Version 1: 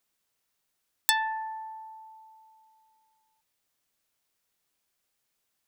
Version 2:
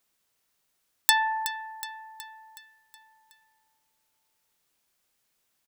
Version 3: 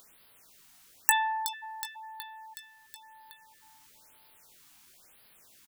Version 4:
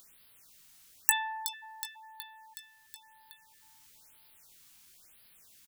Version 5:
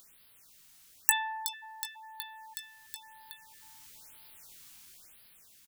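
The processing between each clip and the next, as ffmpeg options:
-af "aecho=1:1:370|740|1110|1480|1850|2220:0.237|0.128|0.0691|0.0373|0.0202|0.0109,volume=3.5dB"
-filter_complex "[0:a]asplit=2[a][b];[b]adelay=19,volume=-8.5dB[c];[a][c]amix=inputs=2:normalize=0,asplit=2[d][e];[e]acompressor=mode=upward:threshold=-30dB:ratio=2.5,volume=-2.5dB[f];[d][f]amix=inputs=2:normalize=0,afftfilt=real='re*(1-between(b*sr/1024,430*pow(7400/430,0.5+0.5*sin(2*PI*1*pts/sr))/1.41,430*pow(7400/430,0.5+0.5*sin(2*PI*1*pts/sr))*1.41))':imag='im*(1-between(b*sr/1024,430*pow(7400/430,0.5+0.5*sin(2*PI*1*pts/sr))/1.41,430*pow(7400/430,0.5+0.5*sin(2*PI*1*pts/sr))*1.41))':win_size=1024:overlap=0.75,volume=-6.5dB"
-af "equalizer=f=630:t=o:w=3:g=-8"
-af "dynaudnorm=f=260:g=7:m=6dB"

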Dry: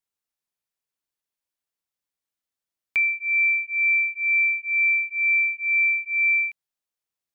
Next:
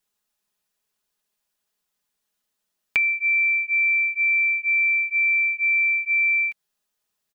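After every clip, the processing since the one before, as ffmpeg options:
-af "bandreject=f=2.2k:w=12,aecho=1:1:4.8:0.65,acompressor=threshold=-28dB:ratio=6,volume=8.5dB"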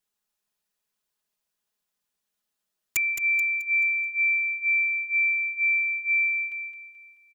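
-filter_complex "[0:a]aeval=exprs='(mod(4.73*val(0)+1,2)-1)/4.73':c=same,asplit=2[a][b];[b]aecho=0:1:216|432|648|864|1080:0.398|0.159|0.0637|0.0255|0.0102[c];[a][c]amix=inputs=2:normalize=0,volume=-4.5dB"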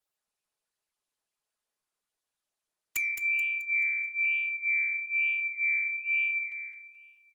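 -filter_complex "[0:a]acrossover=split=270[a][b];[a]aeval=exprs='abs(val(0))':c=same[c];[c][b]amix=inputs=2:normalize=0,flanger=delay=6.4:depth=9.2:regen=76:speed=1.1:shape=sinusoidal" -ar 48000 -c:a libopus -b:a 32k

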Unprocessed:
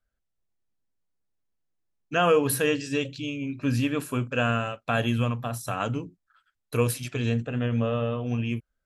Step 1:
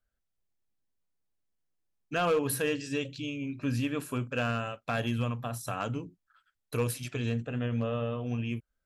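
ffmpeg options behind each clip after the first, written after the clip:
-filter_complex "[0:a]asplit=2[a][b];[b]acompressor=threshold=-33dB:ratio=6,volume=-2.5dB[c];[a][c]amix=inputs=2:normalize=0,asoftclip=type=hard:threshold=-14dB,volume=-7dB"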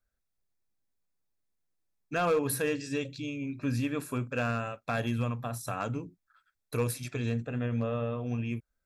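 -af "bandreject=f=3k:w=5.5"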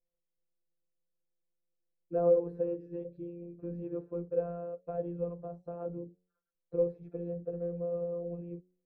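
-af "afftfilt=real='hypot(re,im)*cos(PI*b)':imag='0':win_size=1024:overlap=0.75,lowpass=f=480:t=q:w=4.7,bandreject=f=90.58:t=h:w=4,bandreject=f=181.16:t=h:w=4,bandreject=f=271.74:t=h:w=4,bandreject=f=362.32:t=h:w=4,bandreject=f=452.9:t=h:w=4,bandreject=f=543.48:t=h:w=4,bandreject=f=634.06:t=h:w=4,bandreject=f=724.64:t=h:w=4,bandreject=f=815.22:t=h:w=4,bandreject=f=905.8:t=h:w=4,volume=-3.5dB"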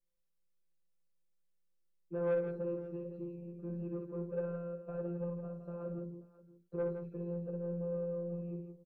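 -af "aecho=1:1:5.1:0.81,asoftclip=type=tanh:threshold=-26dB,aecho=1:1:60|164|534:0.473|0.398|0.112,volume=-3.5dB"

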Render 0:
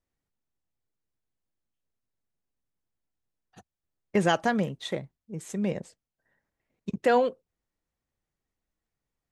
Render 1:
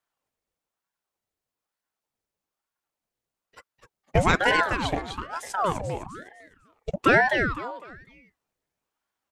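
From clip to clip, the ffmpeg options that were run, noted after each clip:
-filter_complex "[0:a]highpass=110,asplit=5[a][b][c][d][e];[b]adelay=252,afreqshift=120,volume=-6dB[f];[c]adelay=504,afreqshift=240,volume=-16.2dB[g];[d]adelay=756,afreqshift=360,volume=-26.3dB[h];[e]adelay=1008,afreqshift=480,volume=-36.5dB[i];[a][f][g][h][i]amix=inputs=5:normalize=0,aeval=exprs='val(0)*sin(2*PI*730*n/s+730*0.75/1.1*sin(2*PI*1.1*n/s))':c=same,volume=6dB"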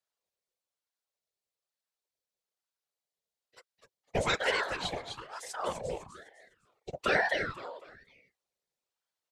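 -af "equalizer=f=125:t=o:w=1:g=11,equalizer=f=250:t=o:w=1:g=-8,equalizer=f=500:t=o:w=1:g=11,equalizer=f=2k:t=o:w=1:g=4,equalizer=f=4k:t=o:w=1:g=9,equalizer=f=8k:t=o:w=1:g=3,afftfilt=real='hypot(re,im)*cos(2*PI*random(0))':imag='hypot(re,im)*sin(2*PI*random(1))':win_size=512:overlap=0.75,bass=f=250:g=-5,treble=f=4k:g=6,volume=-8dB"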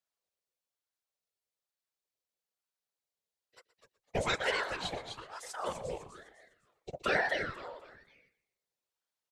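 -filter_complex "[0:a]asplit=4[a][b][c][d];[b]adelay=121,afreqshift=-33,volume=-16.5dB[e];[c]adelay=242,afreqshift=-66,volume=-24.7dB[f];[d]adelay=363,afreqshift=-99,volume=-32.9dB[g];[a][e][f][g]amix=inputs=4:normalize=0,volume=-2.5dB"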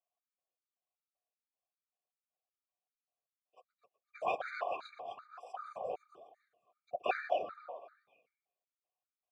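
-filter_complex "[0:a]asplit=2[a][b];[b]adynamicsmooth=sensitivity=6.5:basefreq=1.4k,volume=-2.5dB[c];[a][c]amix=inputs=2:normalize=0,asplit=3[d][e][f];[d]bandpass=f=730:t=q:w=8,volume=0dB[g];[e]bandpass=f=1.09k:t=q:w=8,volume=-6dB[h];[f]bandpass=f=2.44k:t=q:w=8,volume=-9dB[i];[g][h][i]amix=inputs=3:normalize=0,afftfilt=real='re*gt(sin(2*PI*2.6*pts/sr)*(1-2*mod(floor(b*sr/1024/1200),2)),0)':imag='im*gt(sin(2*PI*2.6*pts/sr)*(1-2*mod(floor(b*sr/1024/1200),2)),0)':win_size=1024:overlap=0.75,volume=7dB"

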